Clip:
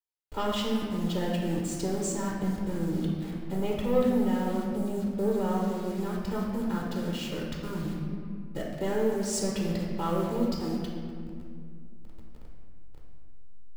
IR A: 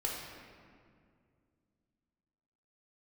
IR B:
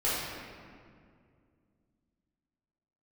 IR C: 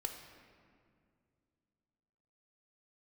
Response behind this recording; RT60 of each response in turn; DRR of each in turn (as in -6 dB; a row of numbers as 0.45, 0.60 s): A; 2.2, 2.2, 2.2 s; -3.5, -10.5, 3.5 dB